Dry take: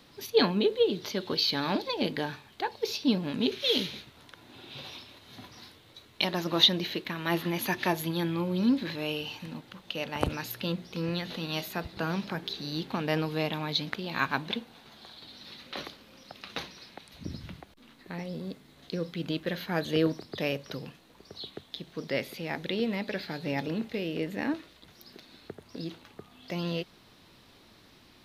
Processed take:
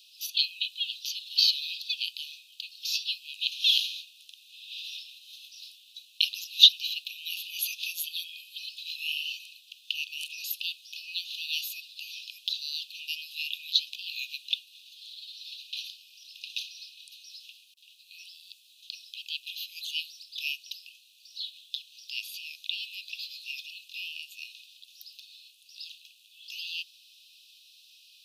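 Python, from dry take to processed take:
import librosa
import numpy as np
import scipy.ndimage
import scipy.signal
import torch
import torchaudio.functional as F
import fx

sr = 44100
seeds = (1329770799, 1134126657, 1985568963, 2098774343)

y = scipy.signal.sosfilt(scipy.signal.cheby1(10, 1.0, 2500.0, 'highpass', fs=sr, output='sos'), x)
y = y * 10.0 ** (6.0 / 20.0)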